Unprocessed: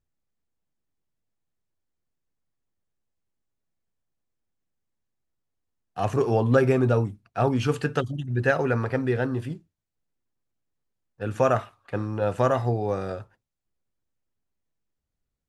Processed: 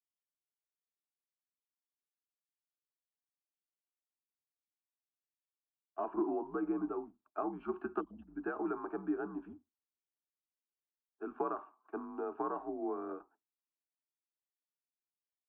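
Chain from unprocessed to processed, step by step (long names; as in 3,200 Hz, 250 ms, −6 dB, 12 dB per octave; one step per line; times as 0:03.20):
downward compressor 6 to 1, threshold −26 dBFS, peak gain reduction 11.5 dB
single-sideband voice off tune −75 Hz 320–2,100 Hz
phaser with its sweep stopped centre 530 Hz, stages 6
multiband upward and downward expander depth 40%
level −2 dB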